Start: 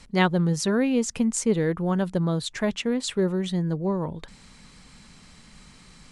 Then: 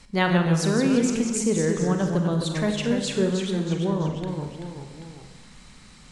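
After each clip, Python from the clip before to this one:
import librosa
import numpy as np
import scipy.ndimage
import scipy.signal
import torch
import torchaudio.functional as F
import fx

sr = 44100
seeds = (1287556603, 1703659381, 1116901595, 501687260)

y = fx.rev_schroeder(x, sr, rt60_s=1.0, comb_ms=30, drr_db=5.5)
y = fx.echo_pitch(y, sr, ms=132, semitones=-1, count=3, db_per_echo=-6.0)
y = F.gain(torch.from_numpy(y), -1.0).numpy()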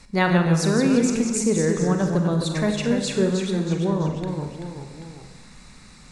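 y = fx.notch(x, sr, hz=3100.0, q=6.2)
y = F.gain(torch.from_numpy(y), 2.0).numpy()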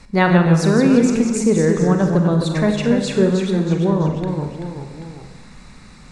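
y = fx.high_shelf(x, sr, hz=3500.0, db=-8.0)
y = F.gain(torch.from_numpy(y), 5.5).numpy()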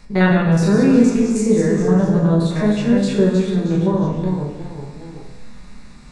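y = fx.spec_steps(x, sr, hold_ms=50)
y = fx.room_shoebox(y, sr, seeds[0], volume_m3=160.0, walls='furnished', distance_m=1.3)
y = F.gain(torch.from_numpy(y), -3.0).numpy()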